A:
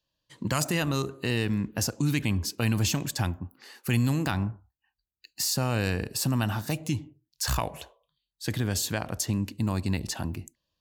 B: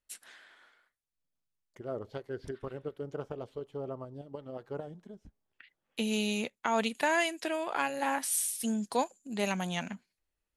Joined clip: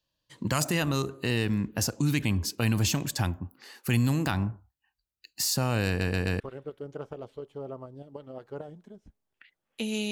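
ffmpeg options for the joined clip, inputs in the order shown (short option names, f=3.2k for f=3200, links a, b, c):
-filter_complex "[0:a]apad=whole_dur=10.11,atrim=end=10.11,asplit=4[a][b][c][d];[a]atrim=end=6.012[e];[b]atrim=start=5.878:end=6.012[f];[c]atrim=start=5.878:end=6.012[g];[d]atrim=start=5.878:end=6.012[h];[1:a]atrim=start=2.588:end=6.3[i];[e][f]acrossfade=d=0.004:c1=hsin:c2=hsin[j];[j][g]acrossfade=d=0.004:c1=hsin:c2=hsin[k];[k][h]acrossfade=d=0.004:c1=hsin:c2=hsin[l];[l][i]acrossfade=d=0.004:c1=hsin:c2=hsin"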